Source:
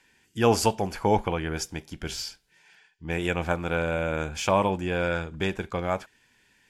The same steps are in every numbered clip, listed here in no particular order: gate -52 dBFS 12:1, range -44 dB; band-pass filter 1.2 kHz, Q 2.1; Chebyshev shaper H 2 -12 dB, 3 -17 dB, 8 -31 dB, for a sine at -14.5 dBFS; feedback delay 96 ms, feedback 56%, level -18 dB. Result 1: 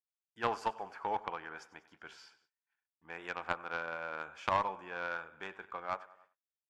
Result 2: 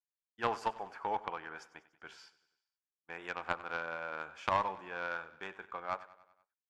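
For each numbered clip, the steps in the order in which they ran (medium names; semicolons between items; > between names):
feedback delay > gate > band-pass filter > Chebyshev shaper; band-pass filter > gate > Chebyshev shaper > feedback delay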